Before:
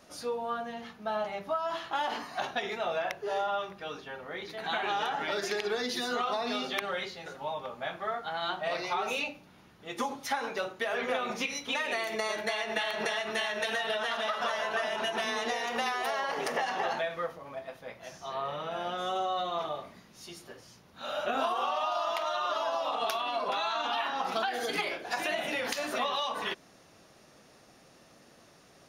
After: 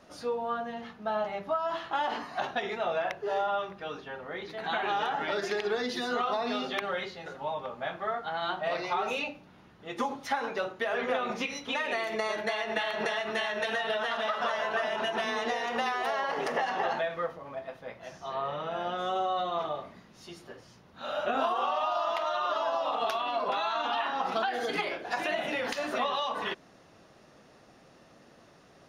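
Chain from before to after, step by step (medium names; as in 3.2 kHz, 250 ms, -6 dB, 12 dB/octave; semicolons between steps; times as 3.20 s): low-pass 2.9 kHz 6 dB/octave; band-stop 2.3 kHz, Q 28; trim +2 dB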